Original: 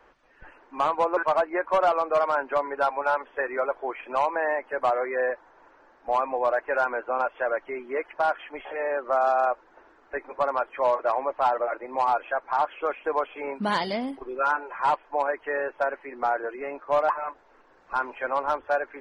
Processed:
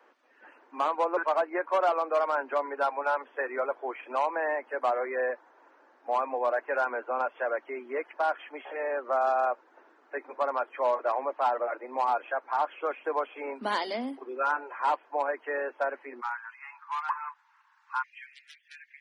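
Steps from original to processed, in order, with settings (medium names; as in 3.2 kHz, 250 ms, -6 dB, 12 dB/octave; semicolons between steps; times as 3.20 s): steep high-pass 220 Hz 96 dB/octave, from 16.20 s 870 Hz, from 18.02 s 1.8 kHz; trim -3.5 dB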